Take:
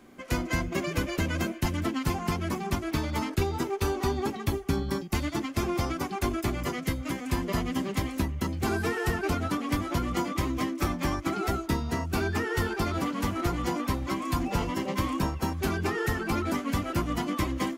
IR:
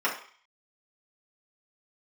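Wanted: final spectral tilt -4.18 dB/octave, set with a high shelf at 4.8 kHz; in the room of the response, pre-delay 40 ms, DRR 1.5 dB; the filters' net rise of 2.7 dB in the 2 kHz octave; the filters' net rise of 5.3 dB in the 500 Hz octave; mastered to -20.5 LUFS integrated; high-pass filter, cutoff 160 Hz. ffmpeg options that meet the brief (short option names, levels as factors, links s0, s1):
-filter_complex "[0:a]highpass=160,equalizer=f=500:t=o:g=7.5,equalizer=f=2000:t=o:g=3.5,highshelf=f=4800:g=-4.5,asplit=2[s0][s1];[1:a]atrim=start_sample=2205,adelay=40[s2];[s1][s2]afir=irnorm=-1:irlink=0,volume=0.211[s3];[s0][s3]amix=inputs=2:normalize=0,volume=2"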